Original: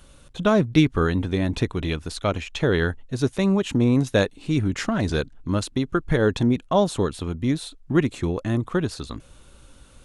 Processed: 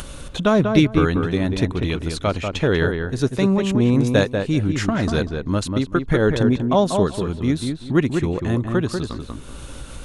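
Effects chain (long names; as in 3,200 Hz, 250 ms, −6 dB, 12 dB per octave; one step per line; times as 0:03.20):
on a send: feedback echo with a low-pass in the loop 191 ms, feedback 18%, low-pass 2,000 Hz, level −5 dB
on the sum: upward compression, threshold −24 dBFS
level +2 dB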